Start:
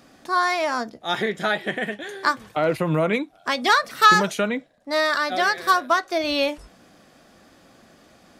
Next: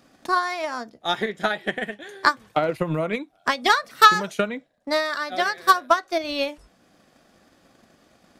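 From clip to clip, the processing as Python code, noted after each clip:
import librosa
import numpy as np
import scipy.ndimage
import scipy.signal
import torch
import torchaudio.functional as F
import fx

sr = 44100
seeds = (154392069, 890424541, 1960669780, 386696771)

y = fx.transient(x, sr, attack_db=10, sustain_db=-2)
y = y * librosa.db_to_amplitude(-5.5)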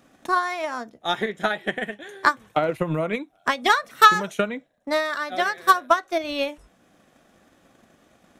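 y = fx.peak_eq(x, sr, hz=4700.0, db=-10.0, octaves=0.27)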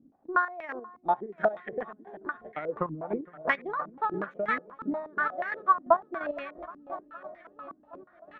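y = fx.echo_swing(x, sr, ms=771, ratio=1.5, feedback_pct=60, wet_db=-14.5)
y = fx.chopper(y, sr, hz=2.9, depth_pct=65, duty_pct=30)
y = fx.filter_held_lowpass(y, sr, hz=8.3, low_hz=270.0, high_hz=2000.0)
y = y * librosa.db_to_amplitude(-8.0)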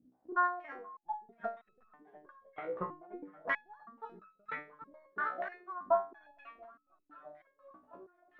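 y = fx.resonator_held(x, sr, hz=3.1, low_hz=63.0, high_hz=1300.0)
y = y * librosa.db_to_amplitude(1.5)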